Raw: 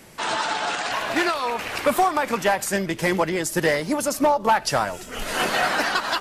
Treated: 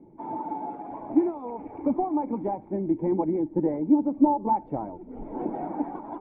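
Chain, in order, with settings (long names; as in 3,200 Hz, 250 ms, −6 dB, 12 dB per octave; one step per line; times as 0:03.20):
spectral magnitudes quantised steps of 15 dB
formant resonators in series u
level +7.5 dB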